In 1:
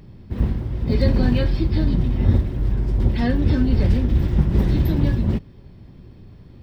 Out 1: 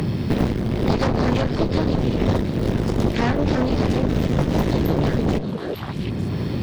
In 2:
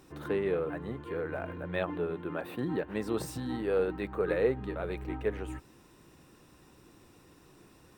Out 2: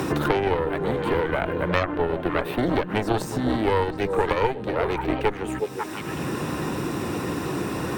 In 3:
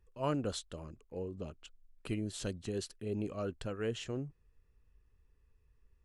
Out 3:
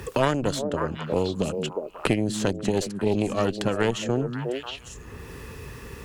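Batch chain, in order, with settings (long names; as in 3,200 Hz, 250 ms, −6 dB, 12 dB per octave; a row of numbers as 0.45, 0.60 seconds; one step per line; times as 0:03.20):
high-pass filter 110 Hz 12 dB per octave
harmonic generator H 6 −8 dB, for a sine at −9 dBFS
echo through a band-pass that steps 180 ms, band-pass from 180 Hz, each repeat 1.4 octaves, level −6.5 dB
dynamic equaliser 6,600 Hz, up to +5 dB, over −59 dBFS, Q 3.6
multiband upward and downward compressor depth 100%
normalise the peak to −6 dBFS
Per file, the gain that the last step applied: −1.5, +7.5, +11.0 decibels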